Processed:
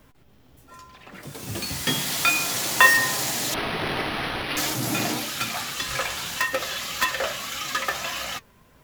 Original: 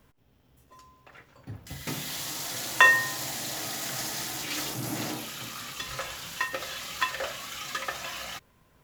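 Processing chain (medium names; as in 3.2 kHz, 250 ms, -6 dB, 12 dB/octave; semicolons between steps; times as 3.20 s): flange 1.7 Hz, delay 3.1 ms, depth 2.2 ms, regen +73%; in parallel at -3 dB: integer overflow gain 24 dB; on the sum: ever faster or slower copies 148 ms, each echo +5 st, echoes 3, each echo -6 dB; 3.54–4.57 s: decimation joined by straight lines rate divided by 6×; trim +6.5 dB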